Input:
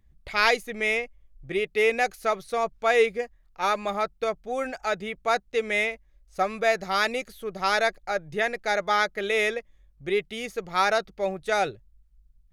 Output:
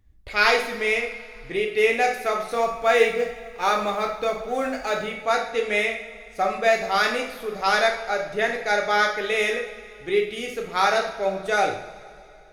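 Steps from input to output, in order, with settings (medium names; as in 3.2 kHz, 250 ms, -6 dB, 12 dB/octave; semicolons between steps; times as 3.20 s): 2.51–5.06 s: companding laws mixed up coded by mu; two-slope reverb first 0.56 s, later 3 s, from -18 dB, DRR 0.5 dB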